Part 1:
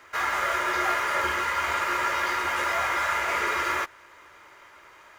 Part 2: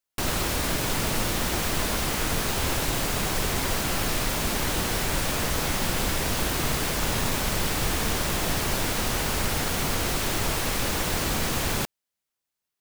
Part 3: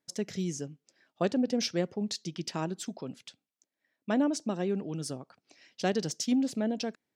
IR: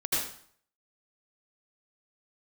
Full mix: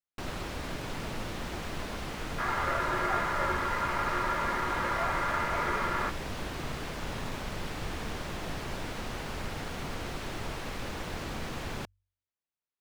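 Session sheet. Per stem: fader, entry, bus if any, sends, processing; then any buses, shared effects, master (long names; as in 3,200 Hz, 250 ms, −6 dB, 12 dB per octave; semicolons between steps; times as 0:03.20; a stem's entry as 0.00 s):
−2.5 dB, 2.25 s, no send, low-pass filter 1,600 Hz
−9.0 dB, 0.00 s, no send, high-shelf EQ 6,600 Hz −11.5 dB; hum removal 47.32 Hz, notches 2
muted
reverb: not used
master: high-shelf EQ 6,100 Hz −5.5 dB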